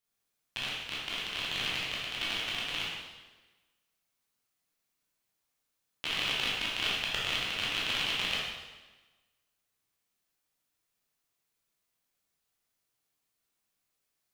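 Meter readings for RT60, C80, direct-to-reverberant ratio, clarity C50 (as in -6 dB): 1.2 s, 2.0 dB, -7.0 dB, -1.0 dB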